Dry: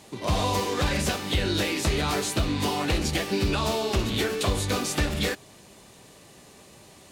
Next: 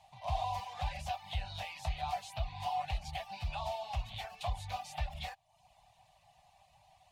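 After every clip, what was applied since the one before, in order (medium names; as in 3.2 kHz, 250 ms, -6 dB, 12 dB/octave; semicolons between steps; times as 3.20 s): FFT filter 150 Hz 0 dB, 410 Hz -24 dB, 730 Hz +14 dB, 1.4 kHz -15 dB, 2.6 kHz -8 dB, 7.6 kHz -21 dB; reverb removal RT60 0.56 s; amplifier tone stack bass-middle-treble 10-0-10; trim -1 dB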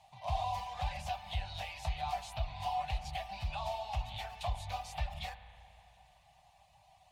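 spring tank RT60 3 s, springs 32/36 ms, chirp 35 ms, DRR 11 dB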